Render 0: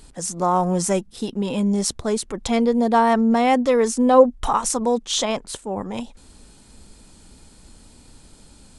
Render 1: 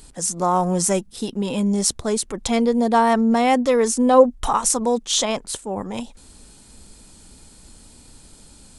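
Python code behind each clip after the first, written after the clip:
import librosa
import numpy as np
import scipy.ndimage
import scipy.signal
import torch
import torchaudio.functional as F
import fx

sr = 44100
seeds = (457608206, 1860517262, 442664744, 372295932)

y = fx.high_shelf(x, sr, hz=6100.0, db=7.0)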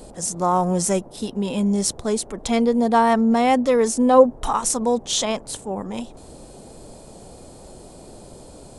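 y = fx.hpss(x, sr, part='percussive', gain_db=-3)
y = fx.dmg_noise_band(y, sr, seeds[0], low_hz=45.0, high_hz=700.0, level_db=-44.0)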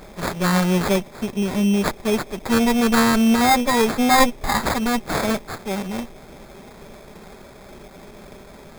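y = fx.lower_of_two(x, sr, delay_ms=5.0)
y = fx.sample_hold(y, sr, seeds[1], rate_hz=2900.0, jitter_pct=0)
y = F.gain(torch.from_numpy(y), 2.0).numpy()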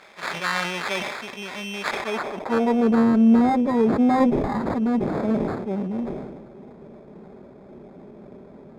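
y = fx.filter_sweep_bandpass(x, sr, from_hz=2200.0, to_hz=270.0, start_s=1.86, end_s=3.06, q=0.91)
y = fx.sustainer(y, sr, db_per_s=39.0)
y = F.gain(torch.from_numpy(y), 1.5).numpy()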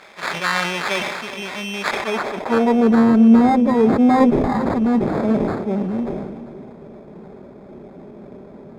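y = x + 10.0 ** (-14.0 / 20.0) * np.pad(x, (int(405 * sr / 1000.0), 0))[:len(x)]
y = F.gain(torch.from_numpy(y), 4.5).numpy()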